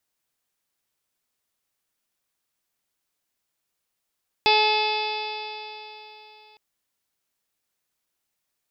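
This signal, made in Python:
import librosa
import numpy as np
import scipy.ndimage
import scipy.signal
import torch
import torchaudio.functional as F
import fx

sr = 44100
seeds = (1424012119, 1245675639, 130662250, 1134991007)

y = fx.additive_stiff(sr, length_s=2.11, hz=427.0, level_db=-23, upper_db=(5.0, -13.5, -14, -7.5, 2.0, -14, 0.0, -7.5, -7.0, -2.5, -12.0), decay_s=3.47, stiffness=0.00057)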